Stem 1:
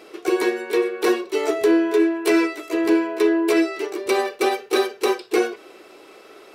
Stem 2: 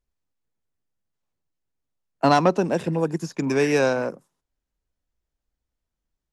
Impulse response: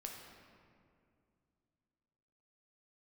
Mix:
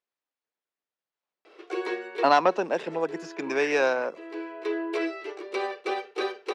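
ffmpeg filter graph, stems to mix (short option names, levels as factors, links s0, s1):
-filter_complex "[0:a]adelay=1450,volume=0.422[s0];[1:a]lowshelf=f=420:g=-5.5,volume=1.06,asplit=2[s1][s2];[s2]apad=whole_len=352410[s3];[s0][s3]sidechaincompress=threshold=0.02:ratio=8:attack=16:release=697[s4];[s4][s1]amix=inputs=2:normalize=0,highpass=390,lowpass=4100"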